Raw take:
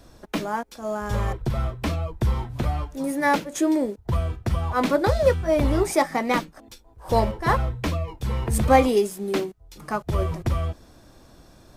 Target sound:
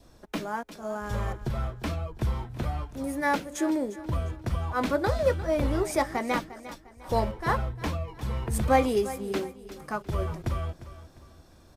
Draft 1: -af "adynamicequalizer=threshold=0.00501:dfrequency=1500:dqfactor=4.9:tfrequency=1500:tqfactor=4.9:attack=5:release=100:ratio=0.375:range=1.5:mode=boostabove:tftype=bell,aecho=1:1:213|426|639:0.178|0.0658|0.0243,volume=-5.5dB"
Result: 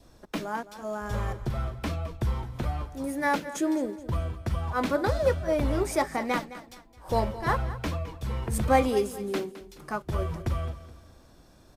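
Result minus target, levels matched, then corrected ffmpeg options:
echo 139 ms early
-af "adynamicequalizer=threshold=0.00501:dfrequency=1500:dqfactor=4.9:tfrequency=1500:tqfactor=4.9:attack=5:release=100:ratio=0.375:range=1.5:mode=boostabove:tftype=bell,aecho=1:1:352|704|1056:0.178|0.0658|0.0243,volume=-5.5dB"

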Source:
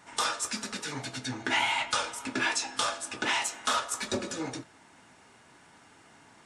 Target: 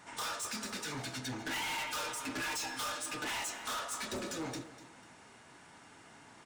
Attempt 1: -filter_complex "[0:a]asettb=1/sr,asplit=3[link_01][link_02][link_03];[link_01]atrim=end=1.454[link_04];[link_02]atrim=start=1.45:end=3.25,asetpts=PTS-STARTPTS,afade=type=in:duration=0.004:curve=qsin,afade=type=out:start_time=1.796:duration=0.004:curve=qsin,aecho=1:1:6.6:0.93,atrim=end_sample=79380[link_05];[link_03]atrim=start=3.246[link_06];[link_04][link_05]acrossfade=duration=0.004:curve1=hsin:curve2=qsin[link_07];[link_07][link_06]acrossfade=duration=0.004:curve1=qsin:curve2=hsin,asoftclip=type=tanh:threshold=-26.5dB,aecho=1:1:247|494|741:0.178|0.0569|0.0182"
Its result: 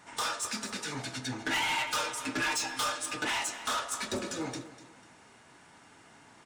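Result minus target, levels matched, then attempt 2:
soft clipping: distortion −6 dB
-filter_complex "[0:a]asettb=1/sr,asplit=3[link_01][link_02][link_03];[link_01]atrim=end=1.454[link_04];[link_02]atrim=start=1.45:end=3.25,asetpts=PTS-STARTPTS,afade=type=in:duration=0.004:curve=qsin,afade=type=out:start_time=1.796:duration=0.004:curve=qsin,aecho=1:1:6.6:0.93,atrim=end_sample=79380[link_05];[link_03]atrim=start=3.246[link_06];[link_04][link_05]acrossfade=duration=0.004:curve1=hsin:curve2=qsin[link_07];[link_07][link_06]acrossfade=duration=0.004:curve1=qsin:curve2=hsin,asoftclip=type=tanh:threshold=-35.5dB,aecho=1:1:247|494|741:0.178|0.0569|0.0182"

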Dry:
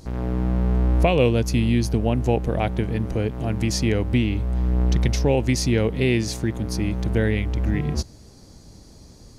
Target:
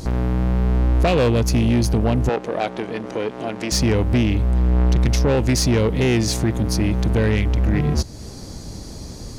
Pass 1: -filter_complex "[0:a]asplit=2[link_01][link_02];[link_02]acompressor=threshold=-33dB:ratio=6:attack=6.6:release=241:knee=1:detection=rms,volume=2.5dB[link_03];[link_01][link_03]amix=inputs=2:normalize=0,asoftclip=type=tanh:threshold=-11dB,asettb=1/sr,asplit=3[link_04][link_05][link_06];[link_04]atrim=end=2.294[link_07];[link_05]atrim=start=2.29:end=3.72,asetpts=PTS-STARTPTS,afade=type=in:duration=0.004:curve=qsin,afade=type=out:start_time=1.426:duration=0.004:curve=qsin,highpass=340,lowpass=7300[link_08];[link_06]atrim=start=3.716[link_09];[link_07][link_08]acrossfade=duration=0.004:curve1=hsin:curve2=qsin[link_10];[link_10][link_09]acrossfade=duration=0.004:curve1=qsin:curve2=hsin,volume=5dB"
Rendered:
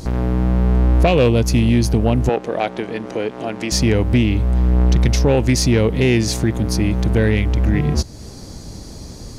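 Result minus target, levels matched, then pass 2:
soft clipping: distortion −8 dB
-filter_complex "[0:a]asplit=2[link_01][link_02];[link_02]acompressor=threshold=-33dB:ratio=6:attack=6.6:release=241:knee=1:detection=rms,volume=2.5dB[link_03];[link_01][link_03]amix=inputs=2:normalize=0,asoftclip=type=tanh:threshold=-17.5dB,asettb=1/sr,asplit=3[link_04][link_05][link_06];[link_04]atrim=end=2.294[link_07];[link_05]atrim=start=2.29:end=3.72,asetpts=PTS-STARTPTS,afade=type=in:duration=0.004:curve=qsin,afade=type=out:start_time=1.426:duration=0.004:curve=qsin,highpass=340,lowpass=7300[link_08];[link_06]atrim=start=3.716[link_09];[link_07][link_08]acrossfade=duration=0.004:curve1=hsin:curve2=qsin[link_10];[link_10][link_09]acrossfade=duration=0.004:curve1=qsin:curve2=hsin,volume=5dB"

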